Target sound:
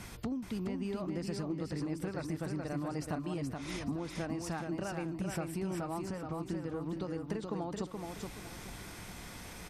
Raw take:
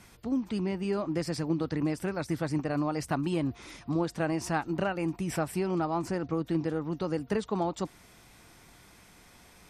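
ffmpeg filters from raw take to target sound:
-filter_complex "[0:a]lowshelf=f=220:g=4,acompressor=threshold=0.00891:ratio=16,asplit=2[s0][s1];[s1]aecho=0:1:425|850|1275|1700:0.596|0.185|0.0572|0.0177[s2];[s0][s2]amix=inputs=2:normalize=0,volume=2.11"

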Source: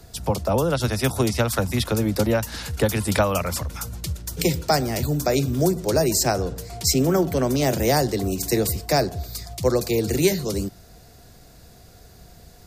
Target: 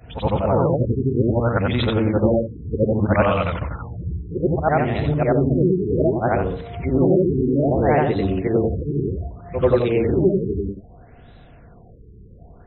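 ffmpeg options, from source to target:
-af "afftfilt=real='re':imag='-im':win_size=8192:overlap=0.75,afftfilt=real='re*lt(b*sr/1024,440*pow(4100/440,0.5+0.5*sin(2*PI*0.63*pts/sr)))':imag='im*lt(b*sr/1024,440*pow(4100/440,0.5+0.5*sin(2*PI*0.63*pts/sr)))':win_size=1024:overlap=0.75,volume=2.51"

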